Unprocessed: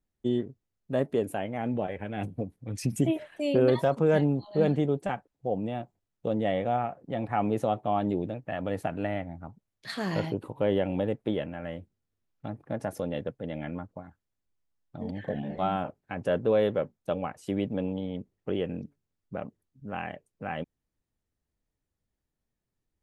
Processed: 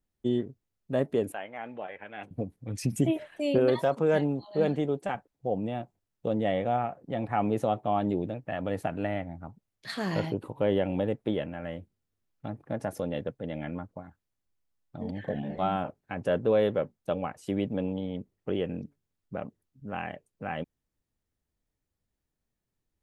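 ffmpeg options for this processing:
-filter_complex "[0:a]asettb=1/sr,asplit=3[a][b][c];[a]atrim=end=1.324[d];[b]atrim=start=1.32:end=2.31,asetpts=PTS-STARTPTS,afade=t=in:d=0.004:c=qsin,afade=t=out:st=0.986:d=0.004:c=qsin,bandpass=f=1.7k:t=q:w=0.75[e];[c]atrim=start=2.306[f];[d][e]acrossfade=d=0.004:c1=hsin:c2=qsin[g];[g][f]acrossfade=d=0.004:c1=qsin:c2=hsin,asettb=1/sr,asplit=3[h][i][j];[h]atrim=end=3.584[k];[i]atrim=start=3.58:end=5.15,asetpts=PTS-STARTPTS,afade=t=in:d=0.004:c=qsin,afade=t=out:st=1.566:d=0.004:c=qsin,lowshelf=f=160:g=-9.5[l];[j]atrim=start=5.146[m];[k][l]acrossfade=d=0.004:c1=hsin:c2=qsin[n];[n][m]acrossfade=d=0.004:c1=qsin:c2=hsin"

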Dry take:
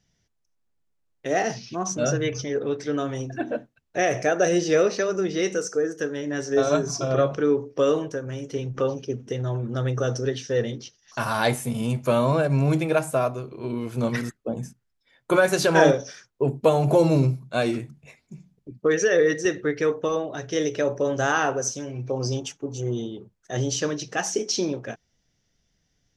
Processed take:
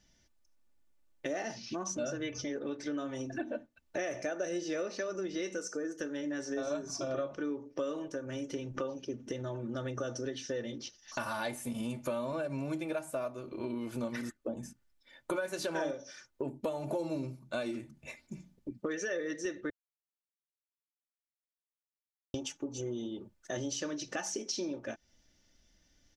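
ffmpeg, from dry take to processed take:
-filter_complex "[0:a]asplit=3[a][b][c];[a]atrim=end=19.7,asetpts=PTS-STARTPTS,afade=t=out:st=19.696:d=0.004:c=hsin[d];[b]atrim=start=19.7:end=22.34,asetpts=PTS-STARTPTS,volume=0[e];[c]atrim=start=22.34,asetpts=PTS-STARTPTS,afade=t=in:d=0.004:c=hsin[f];[d][e][f]concat=n=3:v=0:a=1,equalizer=f=110:w=2.1:g=-3.5,aecho=1:1:3.4:0.52,acompressor=threshold=-38dB:ratio=4,volume=1.5dB"

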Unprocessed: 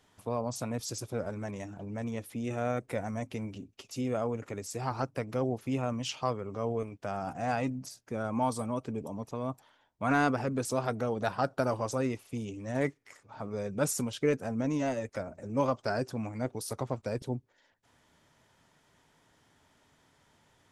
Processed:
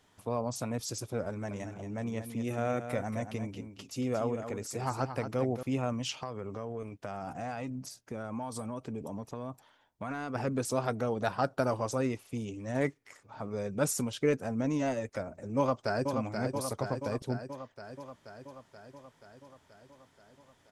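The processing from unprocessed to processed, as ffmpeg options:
-filter_complex "[0:a]asettb=1/sr,asplit=3[a][b][c];[a]atrim=end=1.284[d];[b]atrim=start=1.28:end=5.63,asetpts=PTS-STARTPTS,afade=t=in:d=0.004:c=qsin,afade=t=out:st=4.346:d=0.004:c=qsin,aecho=1:1:228:0.355,atrim=end_sample=191835[e];[c]atrim=start=5.626[f];[d][e]acrossfade=d=0.004:c1=hsin:c2=qsin[g];[g][f]acrossfade=d=0.004:c1=qsin:c2=hsin,asplit=3[h][i][j];[h]afade=t=out:st=6.21:d=0.02[k];[i]acompressor=threshold=-33dB:ratio=6:attack=3.2:release=140:knee=1:detection=peak,afade=t=in:st=6.21:d=0.02,afade=t=out:st=10.34:d=0.02[l];[j]afade=t=in:st=10.34:d=0.02[m];[k][l][m]amix=inputs=3:normalize=0,asplit=2[n][o];[o]afade=t=in:st=15.57:d=0.01,afade=t=out:st=16.12:d=0.01,aecho=0:1:480|960|1440|1920|2400|2880|3360|3840|4320|4800|5280|5760:0.530884|0.371619|0.260133|0.182093|0.127465|0.0892257|0.062458|0.0437206|0.0306044|0.0214231|0.0149962|0.0104973[p];[n][p]amix=inputs=2:normalize=0"

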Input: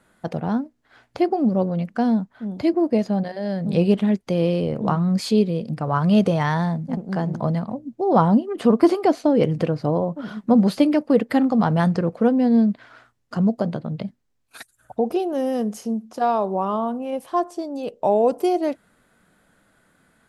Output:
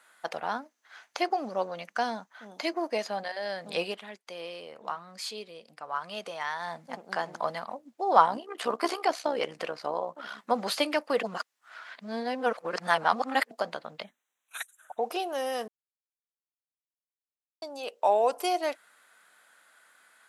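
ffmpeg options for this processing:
-filter_complex "[0:a]asettb=1/sr,asplit=3[a][b][c];[a]atrim=end=0.624[d];[b]atrim=start=0.62:end=3.02,asetpts=PTS-STARTPTS,afade=t=in:d=0.004:c=qsin,afade=t=out:st=2.396:d=0.004:c=qsin,equalizer=f=6.2k:w=7.9:g=10.5[e];[c]atrim=start=3.016[f];[d][e]acrossfade=d=0.004:c1=hsin:c2=qsin[g];[g][f]acrossfade=d=0.004:c1=qsin:c2=hsin,asettb=1/sr,asplit=3[h][i][j];[h]atrim=end=8.264[k];[i]atrim=start=8.26:end=10.39,asetpts=PTS-STARTPTS,afade=t=in:d=0.004:c=qsin,afade=t=out:st=2.126:d=0.004:c=qsin,tremolo=f=65:d=0.621[l];[j]atrim=start=10.386[m];[k][l]acrossfade=d=0.004:c1=hsin:c2=qsin[n];[n][m]acrossfade=d=0.004:c1=qsin:c2=hsin,asettb=1/sr,asplit=3[o][p][q];[o]atrim=end=14.044[r];[p]atrim=start=14.04:end=15.02,asetpts=PTS-STARTPTS,afade=t=in:d=0.004:c=qsin,afade=t=out:st=0.976:d=0.004:c=qsin,asuperstop=centerf=4800:order=8:qfactor=2.6[s];[q]atrim=start=15.016[t];[r][s]acrossfade=d=0.004:c1=hsin:c2=qsin[u];[u][t]acrossfade=d=0.004:c1=qsin:c2=hsin,asplit=7[v][w][x][y][z][aa][ab];[v]atrim=end=3.98,asetpts=PTS-STARTPTS,afade=t=out:st=3.8:d=0.18:silence=0.316228[ac];[w]atrim=start=3.98:end=6.59,asetpts=PTS-STARTPTS,volume=-10dB[ad];[x]atrim=start=6.59:end=11.232,asetpts=PTS-STARTPTS,afade=t=in:d=0.18:silence=0.316228[ae];[y]atrim=start=11.228:end=13.512,asetpts=PTS-STARTPTS,areverse[af];[z]atrim=start=13.508:end=15.68,asetpts=PTS-STARTPTS,afade=t=out:st=2.168:d=0.004:c=hsin[ag];[aa]atrim=start=15.68:end=17.62,asetpts=PTS-STARTPTS,volume=0[ah];[ab]atrim=start=17.62,asetpts=PTS-STARTPTS,afade=t=in:d=0.004:c=hsin[ai];[ac][ad][ae]concat=n=3:v=0:a=1[aj];[aj][af]acrossfade=d=0.004:c1=hsin:c2=hsin[ak];[ag][ah][ai]concat=n=3:v=0:a=1[al];[ak][al]acrossfade=d=0.004:c1=hsin:c2=hsin,highpass=1k,volume=4dB"

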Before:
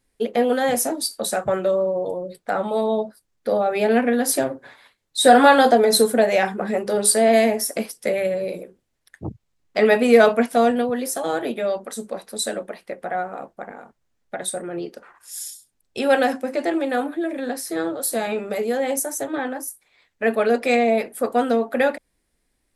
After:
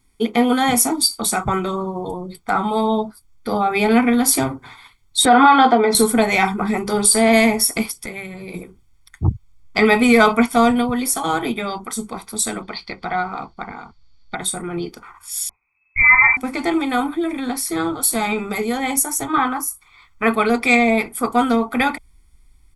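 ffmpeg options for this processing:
-filter_complex "[0:a]asettb=1/sr,asplit=3[a][b][c];[a]atrim=end=5.254[d];[b]atrim=start=5.25:end=5.95,asetpts=PTS-STARTPTS,afade=t=in:d=0.004:c=qsin,afade=t=out:st=0.696:d=0.004:c=qsin,highpass=220,lowpass=2.7k[e];[c]atrim=start=5.946[f];[d][e]acrossfade=d=0.004:c1=hsin:c2=qsin[g];[g][f]acrossfade=d=0.004:c1=qsin:c2=hsin,asettb=1/sr,asplit=3[h][i][j];[h]atrim=end=7.964[k];[i]atrim=start=7.96:end=8.54,asetpts=PTS-STARTPTS,afade=t=in:d=0.004:c=qsin,afade=t=out:st=0.576:d=0.004:c=qsin,acompressor=threshold=-32dB:ratio=2.5:attack=3.2:release=140:knee=1:detection=peak[l];[j]atrim=start=8.536[m];[k][l]acrossfade=d=0.004:c1=hsin:c2=qsin[n];[n][m]acrossfade=d=0.004:c1=qsin:c2=hsin,asettb=1/sr,asplit=3[o][p][q];[o]atrim=end=12.624[r];[p]atrim=start=12.62:end=14.35,asetpts=PTS-STARTPTS,afade=t=in:d=0.004:c=qsin,afade=t=out:st=1.726:d=0.004:c=qsin,lowpass=f=4.5k:t=q:w=8[s];[q]atrim=start=14.346[t];[r][s]acrossfade=d=0.004:c1=hsin:c2=qsin[u];[u][t]acrossfade=d=0.004:c1=qsin:c2=hsin,asettb=1/sr,asplit=3[v][w][x];[v]atrim=end=15.494[y];[w]atrim=start=15.49:end=16.37,asetpts=PTS-STARTPTS,afade=t=in:d=0.004:c=qsin,afade=t=out:st=0.876:d=0.004:c=qsin,lowpass=f=2.2k:t=q:w=0.5098,lowpass=f=2.2k:t=q:w=0.6013,lowpass=f=2.2k:t=q:w=0.9,lowpass=f=2.2k:t=q:w=2.563,afreqshift=-2600[z];[x]atrim=start=16.366[aa];[y][z]acrossfade=d=0.004:c1=hsin:c2=qsin[ab];[ab][aa]acrossfade=d=0.004:c1=qsin:c2=hsin,asettb=1/sr,asplit=3[ac][ad][ae];[ac]atrim=end=19.294[af];[ad]atrim=start=19.29:end=20.34,asetpts=PTS-STARTPTS,afade=t=in:d=0.004:c=qsin,afade=t=out:st=1.046:d=0.004:c=qsin,equalizer=f=1.2k:t=o:w=0.62:g=10.5[ag];[ae]atrim=start=20.336[ah];[af][ag]acrossfade=d=0.004:c1=hsin:c2=qsin[ai];[ai][ah]acrossfade=d=0.004:c1=qsin:c2=hsin,aecho=1:1:0.9:0.89,asubboost=boost=4.5:cutoff=96,alimiter=level_in=7dB:limit=-1dB:release=50:level=0:latency=1,volume=-2dB"

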